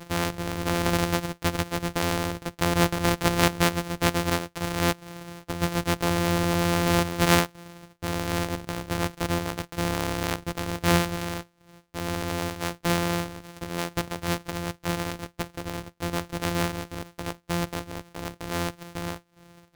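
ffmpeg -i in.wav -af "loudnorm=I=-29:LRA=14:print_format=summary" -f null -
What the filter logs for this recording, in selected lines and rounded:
Input Integrated:    -27.7 LUFS
Input True Peak:      -0.4 dBTP
Input LRA:             8.7 LU
Input Threshold:     -38.2 LUFS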